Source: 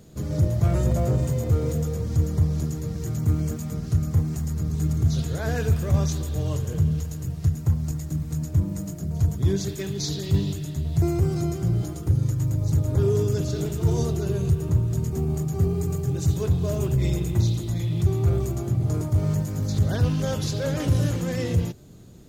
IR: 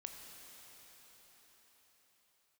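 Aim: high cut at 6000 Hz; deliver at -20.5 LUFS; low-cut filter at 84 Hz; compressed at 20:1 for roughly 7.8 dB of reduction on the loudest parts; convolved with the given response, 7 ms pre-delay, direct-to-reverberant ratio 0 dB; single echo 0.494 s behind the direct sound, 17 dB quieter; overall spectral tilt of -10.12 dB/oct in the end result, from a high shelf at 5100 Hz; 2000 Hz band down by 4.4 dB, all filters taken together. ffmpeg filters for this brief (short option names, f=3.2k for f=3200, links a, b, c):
-filter_complex "[0:a]highpass=84,lowpass=6k,equalizer=f=2k:t=o:g=-4.5,highshelf=f=5.1k:g=-9,acompressor=threshold=-24dB:ratio=20,aecho=1:1:494:0.141,asplit=2[a][b];[1:a]atrim=start_sample=2205,adelay=7[c];[b][c]afir=irnorm=-1:irlink=0,volume=3.5dB[d];[a][d]amix=inputs=2:normalize=0,volume=6dB"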